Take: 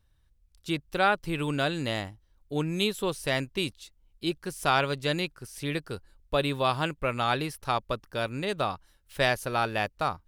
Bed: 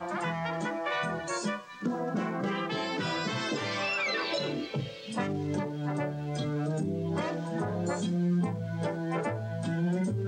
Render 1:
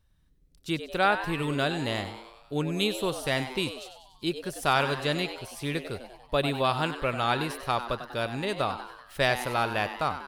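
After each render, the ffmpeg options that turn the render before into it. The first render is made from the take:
-filter_complex "[0:a]asplit=7[s0][s1][s2][s3][s4][s5][s6];[s1]adelay=96,afreqshift=120,volume=0.282[s7];[s2]adelay=192,afreqshift=240,volume=0.16[s8];[s3]adelay=288,afreqshift=360,volume=0.0912[s9];[s4]adelay=384,afreqshift=480,volume=0.0525[s10];[s5]adelay=480,afreqshift=600,volume=0.0299[s11];[s6]adelay=576,afreqshift=720,volume=0.017[s12];[s0][s7][s8][s9][s10][s11][s12]amix=inputs=7:normalize=0"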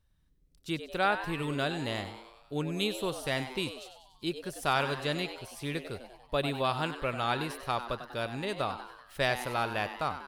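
-af "volume=0.631"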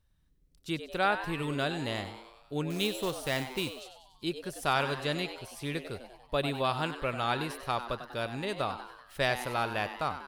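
-filter_complex "[0:a]asettb=1/sr,asplit=3[s0][s1][s2];[s0]atrim=end=2.704[s3];[s1]atrim=start=2.7:end=3.81,asetpts=PTS-STARTPTS,afade=t=in:d=0.004:c=qsin,afade=t=out:st=1.106:d=0.004:c=qsin,acrusher=bits=3:mode=log:mix=0:aa=0.000001[s4];[s2]atrim=start=3.806[s5];[s3][s4]acrossfade=d=0.004:c1=hsin:c2=qsin[s6];[s6][s5]acrossfade=d=0.004:c1=qsin:c2=hsin"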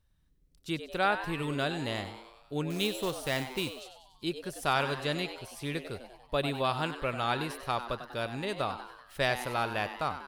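-af anull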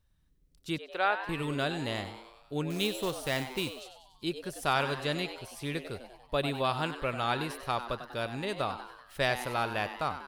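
-filter_complex "[0:a]asettb=1/sr,asplit=3[s0][s1][s2];[s0]atrim=end=0.784[s3];[s1]atrim=start=0.78:end=1.29,asetpts=PTS-STARTPTS,afade=t=in:d=0.004:c=qsin,afade=t=out:st=0.506:d=0.004:c=qsin,acrossover=split=350 4400:gain=0.1 1 0.224[s4][s5][s6];[s4][s5][s6]amix=inputs=3:normalize=0[s7];[s2]atrim=start=1.286[s8];[s3][s7]acrossfade=d=0.004:c1=hsin:c2=qsin[s9];[s9][s8]acrossfade=d=0.004:c1=qsin:c2=hsin"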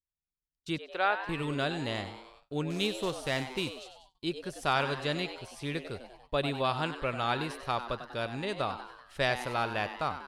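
-af "agate=range=0.0316:threshold=0.00158:ratio=16:detection=peak,lowpass=8600"

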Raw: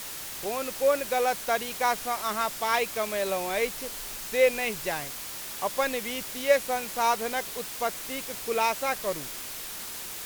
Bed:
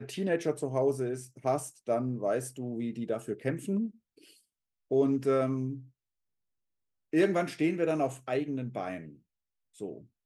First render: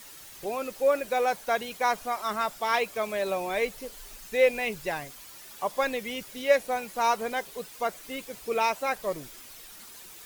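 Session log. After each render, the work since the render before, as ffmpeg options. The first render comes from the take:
-af "afftdn=nr=11:nf=-38"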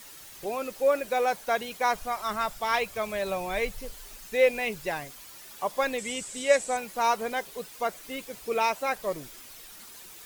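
-filter_complex "[0:a]asplit=3[s0][s1][s2];[s0]afade=t=out:st=1.94:d=0.02[s3];[s1]asubboost=boost=5.5:cutoff=130,afade=t=in:st=1.94:d=0.02,afade=t=out:st=3.94:d=0.02[s4];[s2]afade=t=in:st=3.94:d=0.02[s5];[s3][s4][s5]amix=inputs=3:normalize=0,asettb=1/sr,asplit=3[s6][s7][s8];[s6]atrim=end=5.984[s9];[s7]atrim=start=5.98:end=6.77,asetpts=PTS-STARTPTS,afade=t=in:d=0.004:c=qsin,afade=t=out:st=0.786:d=0.004:c=qsin,lowpass=f=7900:t=q:w=9.2[s10];[s8]atrim=start=6.766[s11];[s9][s10]acrossfade=d=0.004:c1=hsin:c2=qsin[s12];[s12][s11]acrossfade=d=0.004:c1=qsin:c2=hsin"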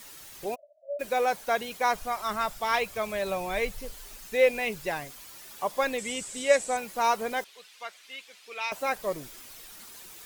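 -filter_complex "[0:a]asplit=3[s0][s1][s2];[s0]afade=t=out:st=0.54:d=0.02[s3];[s1]asuperpass=centerf=630:order=12:qfactor=6,afade=t=in:st=0.54:d=0.02,afade=t=out:st=0.99:d=0.02[s4];[s2]afade=t=in:st=0.99:d=0.02[s5];[s3][s4][s5]amix=inputs=3:normalize=0,asettb=1/sr,asplit=3[s6][s7][s8];[s6]atrim=end=7.444[s9];[s7]atrim=start=7.44:end=8.72,asetpts=PTS-STARTPTS,afade=t=in:d=0.004:c=qsin,afade=t=out:st=1.276:d=0.004:c=qsin,bandpass=f=3000:t=q:w=1.1[s10];[s8]atrim=start=8.716[s11];[s9][s10]acrossfade=d=0.004:c1=hsin:c2=qsin[s12];[s12][s11]acrossfade=d=0.004:c1=qsin:c2=hsin"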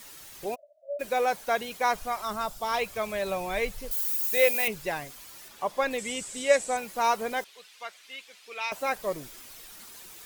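-filter_complex "[0:a]asettb=1/sr,asplit=3[s0][s1][s2];[s0]atrim=end=2.254[s3];[s1]atrim=start=2.25:end=2.79,asetpts=PTS-STARTPTS,afade=t=in:d=0.004:c=qsin,afade=t=out:st=0.536:d=0.004:c=qsin,equalizer=f=2000:t=o:w=0.9:g=-9.5[s4];[s2]atrim=start=2.786[s5];[s3][s4]acrossfade=d=0.004:c1=hsin:c2=qsin[s6];[s6][s5]acrossfade=d=0.004:c1=qsin:c2=hsin,asettb=1/sr,asplit=3[s7][s8][s9];[s7]atrim=end=3.914[s10];[s8]atrim=start=3.91:end=4.68,asetpts=PTS-STARTPTS,afade=t=in:d=0.004:c=qsin,afade=t=out:st=0.766:d=0.004:c=qsin,aemphasis=mode=production:type=bsi[s11];[s9]atrim=start=4.676[s12];[s10][s11]acrossfade=d=0.004:c1=hsin:c2=qsin[s13];[s13][s12]acrossfade=d=0.004:c1=qsin:c2=hsin,asettb=1/sr,asplit=3[s14][s15][s16];[s14]atrim=end=5.484[s17];[s15]atrim=start=5.48:end=5.91,asetpts=PTS-STARTPTS,afade=t=in:d=0.004:c=qsin,afade=t=out:st=0.426:d=0.004:c=qsin,highshelf=f=7100:g=-8.5[s18];[s16]atrim=start=5.906[s19];[s17][s18]acrossfade=d=0.004:c1=hsin:c2=qsin[s20];[s20][s19]acrossfade=d=0.004:c1=qsin:c2=hsin"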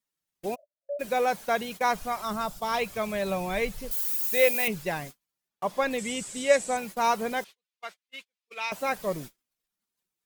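-af "agate=range=0.00891:threshold=0.00891:ratio=16:detection=peak,equalizer=f=180:w=1.4:g=8"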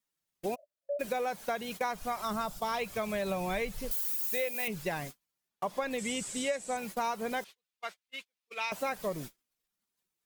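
-af "acompressor=threshold=0.0355:ratio=10"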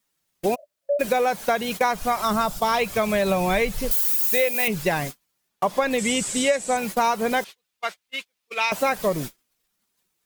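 -af "volume=3.76"

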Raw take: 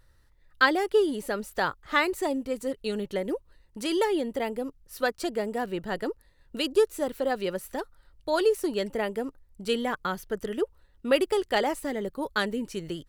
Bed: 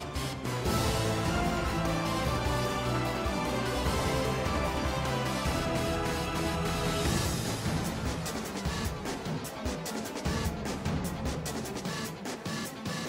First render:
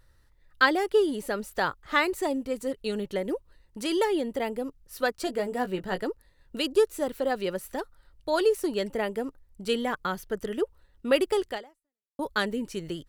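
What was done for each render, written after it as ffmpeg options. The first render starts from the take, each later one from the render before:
-filter_complex "[0:a]asettb=1/sr,asplit=3[s0][s1][s2];[s0]atrim=end=5.254[s3];[s1]atrim=start=5.25:end=6.01,asetpts=PTS-STARTPTS,afade=t=in:d=0.004:c=qsin,afade=t=out:st=0.756:d=0.004:c=qsin,asplit=2[s4][s5];[s5]adelay=16,volume=0.447[s6];[s4][s6]amix=inputs=2:normalize=0,atrim=end_sample=33516[s7];[s2]atrim=start=6.006[s8];[s3][s7]acrossfade=d=0.004:c1=hsin:c2=qsin[s9];[s9][s8]acrossfade=d=0.004:c1=qsin:c2=hsin,asplit=2[s10][s11];[s10]atrim=end=12.19,asetpts=PTS-STARTPTS,afade=t=out:st=11.49:d=0.7:c=exp[s12];[s11]atrim=start=12.19,asetpts=PTS-STARTPTS,afade=t=in:d=0.004:c=hsin[s13];[s12][s13]concat=n=2:v=0:a=1"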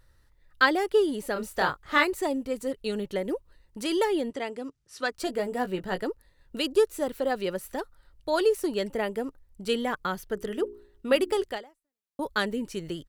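-filter_complex "[0:a]asplit=3[s0][s1][s2];[s0]afade=t=out:st=1.35:d=0.02[s3];[s1]asplit=2[s4][s5];[s5]adelay=27,volume=0.708[s6];[s4][s6]amix=inputs=2:normalize=0,afade=t=in:st=1.35:d=0.02,afade=t=out:st=2.03:d=0.02[s7];[s2]afade=t=in:st=2.03:d=0.02[s8];[s3][s7][s8]amix=inputs=3:normalize=0,asettb=1/sr,asplit=3[s9][s10][s11];[s9]atrim=end=4.304[s12];[s10]atrim=start=4.3:end=5.12,asetpts=PTS-STARTPTS,afade=t=in:d=0.004:c=qsin,afade=t=out:st=0.816:d=0.004:c=qsin,highpass=120,equalizer=f=210:t=q:w=4:g=-8,equalizer=f=520:t=q:w=4:g=-6,equalizer=f=830:t=q:w=4:g=-5,equalizer=f=5700:t=q:w=4:g=3,lowpass=f=9000:w=0.5412,lowpass=f=9000:w=1.3066[s13];[s11]atrim=start=5.116[s14];[s12][s13]acrossfade=d=0.004:c1=hsin:c2=qsin[s15];[s15][s14]acrossfade=d=0.004:c1=qsin:c2=hsin,asettb=1/sr,asplit=3[s16][s17][s18];[s16]atrim=end=10.344[s19];[s17]atrim=start=10.34:end=11.44,asetpts=PTS-STARTPTS,afade=t=in:d=0.004:c=qsin,afade=t=out:st=1.096:d=0.004:c=qsin,bandreject=f=59.02:t=h:w=4,bandreject=f=118.04:t=h:w=4,bandreject=f=177.06:t=h:w=4,bandreject=f=236.08:t=h:w=4,bandreject=f=295.1:t=h:w=4,bandreject=f=354.12:t=h:w=4,bandreject=f=413.14:t=h:w=4[s20];[s18]atrim=start=11.436[s21];[s19][s20]acrossfade=d=0.004:c1=hsin:c2=qsin[s22];[s22][s21]acrossfade=d=0.004:c1=qsin:c2=hsin"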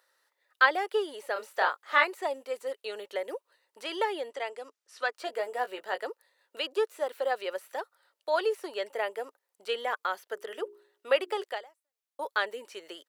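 -filter_complex "[0:a]acrossover=split=3800[s0][s1];[s1]acompressor=threshold=0.00251:ratio=4:attack=1:release=60[s2];[s0][s2]amix=inputs=2:normalize=0,highpass=f=500:w=0.5412,highpass=f=500:w=1.3066"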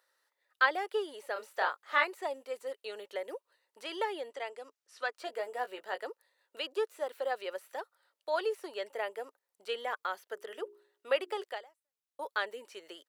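-af "volume=0.596"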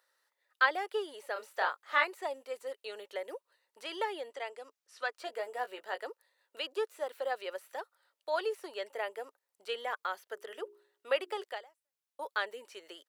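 -af "lowshelf=f=210:g=-8"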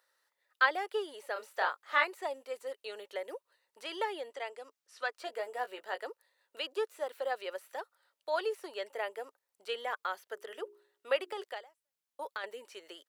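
-filter_complex "[0:a]asettb=1/sr,asplit=3[s0][s1][s2];[s0]atrim=end=11.164[s3];[s1]atrim=start=11.16:end=12.44,asetpts=PTS-STARTPTS,afade=t=in:d=0.004:c=qsin,afade=t=out:st=1.276:d=0.004:c=qsin,acompressor=threshold=0.02:ratio=6:attack=3.2:release=140:knee=1:detection=peak[s4];[s2]atrim=start=12.436[s5];[s3][s4]acrossfade=d=0.004:c1=hsin:c2=qsin[s6];[s6][s5]acrossfade=d=0.004:c1=qsin:c2=hsin"

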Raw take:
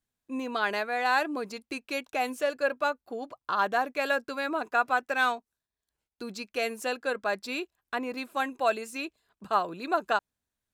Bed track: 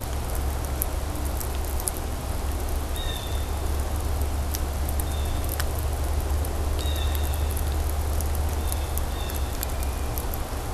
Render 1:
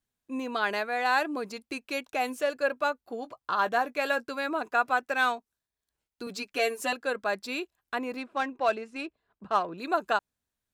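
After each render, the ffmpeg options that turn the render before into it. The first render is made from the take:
-filter_complex "[0:a]asettb=1/sr,asplit=3[s0][s1][s2];[s0]atrim=end=3.054[s3];[s1]atrim=start=3.05:end=4.3,asetpts=PTS-STARTPTS,afade=t=in:d=0.004:c=qsin,afade=t=out:st=1.246:d=0.004:c=qsin,asplit=2[s4][s5];[s5]adelay=17,volume=0.224[s6];[s4][s6]amix=inputs=2:normalize=0,atrim=end_sample=55125[s7];[s2]atrim=start=4.296[s8];[s3][s7]acrossfade=d=0.004:c1=hsin:c2=qsin[s9];[s9][s8]acrossfade=d=0.004:c1=qsin:c2=hsin,asettb=1/sr,asplit=3[s10][s11][s12];[s10]atrim=end=6.264[s13];[s11]atrim=start=6.26:end=6.93,asetpts=PTS-STARTPTS,afade=t=in:d=0.004:c=qsin,afade=t=out:st=0.666:d=0.004:c=qsin,aecho=1:1:7:0.94,atrim=end_sample=29547[s14];[s12]atrim=start=6.926[s15];[s13][s14]acrossfade=d=0.004:c1=hsin:c2=qsin[s16];[s16][s15]acrossfade=d=0.004:c1=qsin:c2=hsin,asettb=1/sr,asplit=3[s17][s18][s19];[s17]atrim=end=8.174[s20];[s18]atrim=start=8.17:end=9.78,asetpts=PTS-STARTPTS,afade=t=in:d=0.004:c=qsin,afade=t=out:st=1.606:d=0.004:c=qsin,adynamicsmooth=sensitivity=3.5:basefreq=2400[s21];[s19]atrim=start=9.776[s22];[s20][s21]acrossfade=d=0.004:c1=hsin:c2=qsin[s23];[s23][s22]acrossfade=d=0.004:c1=qsin:c2=hsin"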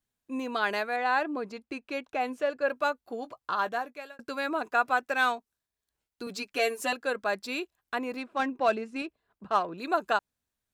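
-filter_complex "[0:a]asettb=1/sr,asplit=3[s0][s1][s2];[s0]atrim=end=0.964[s3];[s1]atrim=start=0.96:end=2.68,asetpts=PTS-STARTPTS,afade=t=in:d=0.004:c=qsin,afade=t=out:st=1.716:d=0.004:c=qsin,aemphasis=mode=reproduction:type=75kf[s4];[s2]atrim=start=2.676[s5];[s3][s4]acrossfade=d=0.004:c1=hsin:c2=qsin[s6];[s6][s5]acrossfade=d=0.004:c1=qsin:c2=hsin,asettb=1/sr,asplit=3[s7][s8][s9];[s7]atrim=end=8.394[s10];[s8]atrim=start=8.39:end=9.02,asetpts=PTS-STARTPTS,afade=t=in:d=0.004:c=qsin,afade=t=out:st=0.626:d=0.004:c=qsin,equalizer=f=210:w=0.86:g=6[s11];[s9]atrim=start=9.016[s12];[s10][s11]acrossfade=d=0.004:c1=hsin:c2=qsin[s13];[s13][s12]acrossfade=d=0.004:c1=qsin:c2=hsin,asplit=2[s14][s15];[s14]atrim=end=4.19,asetpts=PTS-STARTPTS,afade=t=out:st=3.42:d=0.77[s16];[s15]atrim=start=4.19,asetpts=PTS-STARTPTS,afade=t=in:d=0.004:c=hsin[s17];[s16][s17]concat=n=2:v=0:a=1"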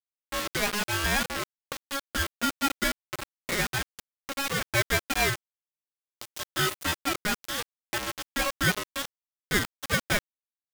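-af "acrusher=bits=4:mix=0:aa=0.000001,aeval=exprs='val(0)*sgn(sin(2*PI*830*n/s))':c=same"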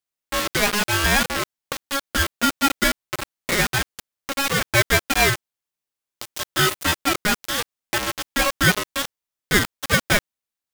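-af "volume=2.37"

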